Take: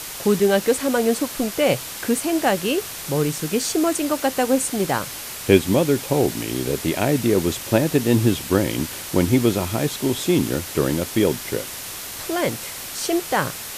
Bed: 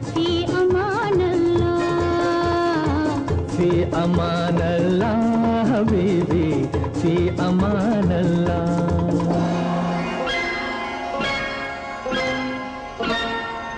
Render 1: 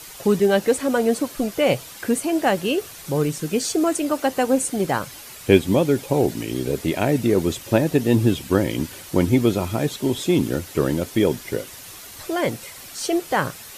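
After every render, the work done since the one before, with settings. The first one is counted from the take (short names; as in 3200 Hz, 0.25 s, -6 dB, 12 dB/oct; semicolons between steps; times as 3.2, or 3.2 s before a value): denoiser 9 dB, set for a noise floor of -33 dBFS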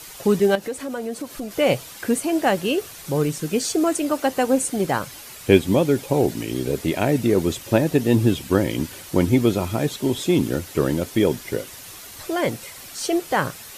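0.55–1.51 compressor 2:1, threshold -32 dBFS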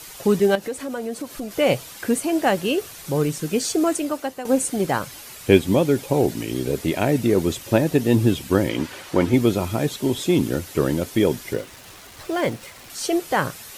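3.91–4.45 fade out, to -14 dB; 8.69–9.34 overdrive pedal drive 13 dB, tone 1800 Hz, clips at -4.5 dBFS; 11.53–12.9 backlash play -34.5 dBFS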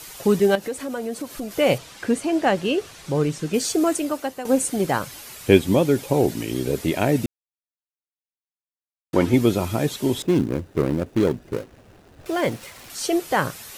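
1.78–3.54 air absorption 55 m; 7.26–9.13 mute; 10.22–12.26 median filter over 41 samples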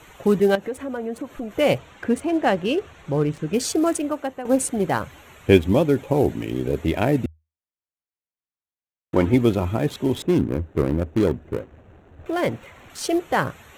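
Wiener smoothing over 9 samples; bell 79 Hz +11 dB 0.29 oct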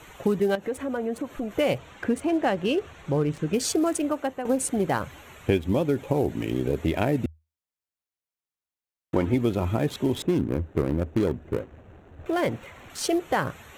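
compressor 4:1, threshold -20 dBFS, peak gain reduction 10.5 dB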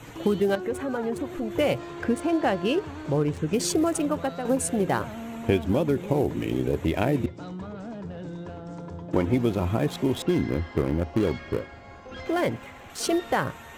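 add bed -18 dB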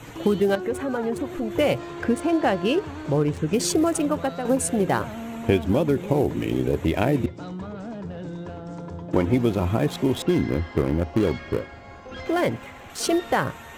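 gain +2.5 dB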